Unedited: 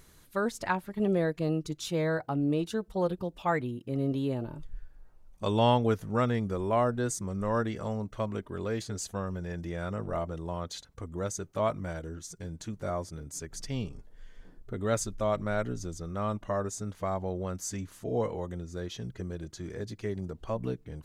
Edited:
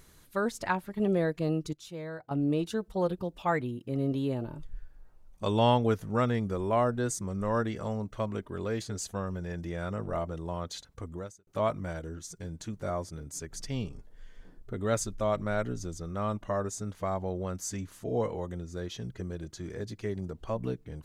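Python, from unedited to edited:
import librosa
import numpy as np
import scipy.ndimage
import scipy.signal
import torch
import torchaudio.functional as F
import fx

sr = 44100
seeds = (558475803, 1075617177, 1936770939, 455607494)

y = fx.edit(x, sr, fx.clip_gain(start_s=1.73, length_s=0.58, db=-10.5),
    fx.fade_out_span(start_s=11.12, length_s=0.35, curve='qua'), tone=tone)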